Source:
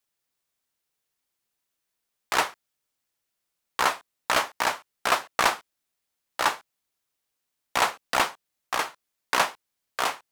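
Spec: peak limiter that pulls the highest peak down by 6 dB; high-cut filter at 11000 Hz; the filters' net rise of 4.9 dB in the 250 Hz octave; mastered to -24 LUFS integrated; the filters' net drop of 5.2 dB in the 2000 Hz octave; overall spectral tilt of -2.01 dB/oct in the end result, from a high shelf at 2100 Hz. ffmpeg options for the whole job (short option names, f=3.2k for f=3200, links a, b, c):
-af "lowpass=11k,equalizer=f=250:t=o:g=6.5,equalizer=f=2k:t=o:g=-5,highshelf=f=2.1k:g=-3.5,volume=7.5dB,alimiter=limit=-7dB:level=0:latency=1"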